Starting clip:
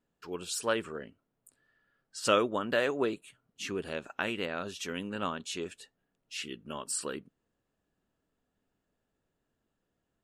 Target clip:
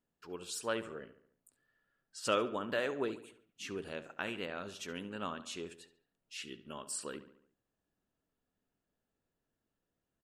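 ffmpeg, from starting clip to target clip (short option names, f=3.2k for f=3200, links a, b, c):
-filter_complex "[0:a]asplit=2[a][b];[b]adelay=71,lowpass=f=3.8k:p=1,volume=-13.5dB,asplit=2[c][d];[d]adelay=71,lowpass=f=3.8k:p=1,volume=0.52,asplit=2[e][f];[f]adelay=71,lowpass=f=3.8k:p=1,volume=0.52,asplit=2[g][h];[h]adelay=71,lowpass=f=3.8k:p=1,volume=0.52,asplit=2[i][j];[j]adelay=71,lowpass=f=3.8k:p=1,volume=0.52[k];[a][c][e][g][i][k]amix=inputs=6:normalize=0,volume=-6dB"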